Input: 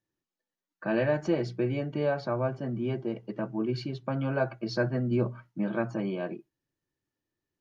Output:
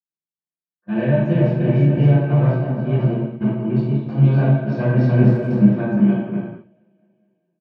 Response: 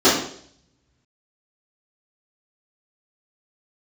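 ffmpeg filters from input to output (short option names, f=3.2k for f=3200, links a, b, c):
-filter_complex "[0:a]aecho=1:1:290|551|785.9|997.3|1188:0.631|0.398|0.251|0.158|0.1,acrossover=split=150[a][b];[b]acompressor=threshold=-39dB:ratio=2[c];[a][c]amix=inputs=2:normalize=0,bandreject=f=90.23:t=h:w=4,bandreject=f=180.46:t=h:w=4,bandreject=f=270.69:t=h:w=4,bandreject=f=360.92:t=h:w=4,bandreject=f=451.15:t=h:w=4,bandreject=f=541.38:t=h:w=4,asplit=2[d][e];[e]acrusher=bits=3:mix=0:aa=0.5,volume=-7.5dB[f];[d][f]amix=inputs=2:normalize=0,agate=range=-35dB:threshold=-33dB:ratio=16:detection=peak[g];[1:a]atrim=start_sample=2205,atrim=end_sample=6174,asetrate=23814,aresample=44100[h];[g][h]afir=irnorm=-1:irlink=0,asplit=3[i][j][k];[i]afade=t=out:st=5.23:d=0.02[l];[j]adynamicsmooth=sensitivity=5:basefreq=3.6k,afade=t=in:st=5.23:d=0.02,afade=t=out:st=5.68:d=0.02[m];[k]afade=t=in:st=5.68:d=0.02[n];[l][m][n]amix=inputs=3:normalize=0,volume=-16.5dB"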